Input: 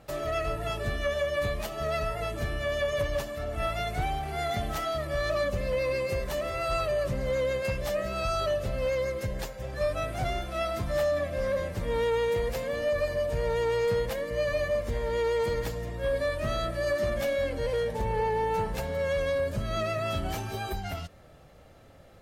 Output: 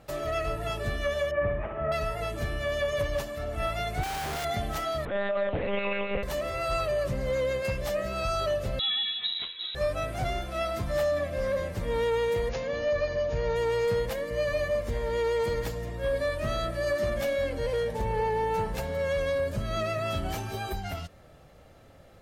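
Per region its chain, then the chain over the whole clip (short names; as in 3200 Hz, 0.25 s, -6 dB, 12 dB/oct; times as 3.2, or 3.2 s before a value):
1.31–1.92 inverse Chebyshev low-pass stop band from 4200 Hz + flutter echo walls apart 10.7 m, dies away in 0.65 s
4.03–4.45 CVSD 32 kbps + low shelf 190 Hz -4.5 dB + Schmitt trigger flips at -47.5 dBFS
5.05–6.23 monotone LPC vocoder at 8 kHz 200 Hz + Doppler distortion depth 0.14 ms
8.79–9.75 notch 790 Hz, Q 11 + inverted band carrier 3900 Hz + notch comb 300 Hz
12.49–13.56 brick-wall FIR low-pass 7000 Hz + flutter echo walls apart 10.7 m, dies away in 0.22 s
whole clip: dry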